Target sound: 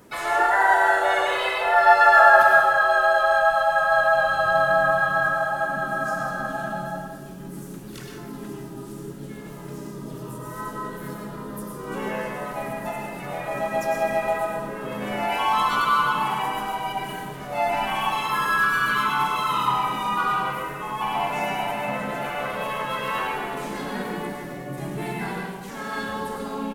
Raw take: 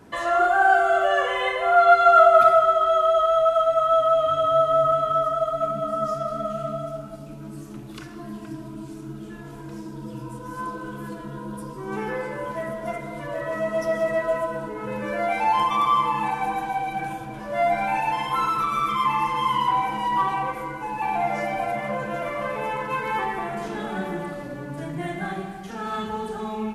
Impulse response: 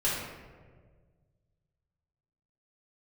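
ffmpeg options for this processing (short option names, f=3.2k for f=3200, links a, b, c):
-filter_complex "[0:a]crystalizer=i=1.5:c=0,asplit=3[a][b][c];[b]asetrate=37084,aresample=44100,atempo=1.18921,volume=-13dB[d];[c]asetrate=55563,aresample=44100,atempo=0.793701,volume=-1dB[e];[a][d][e]amix=inputs=3:normalize=0,asplit=2[f][g];[1:a]atrim=start_sample=2205,atrim=end_sample=4410,adelay=98[h];[g][h]afir=irnorm=-1:irlink=0,volume=-10dB[i];[f][i]amix=inputs=2:normalize=0,volume=-5dB"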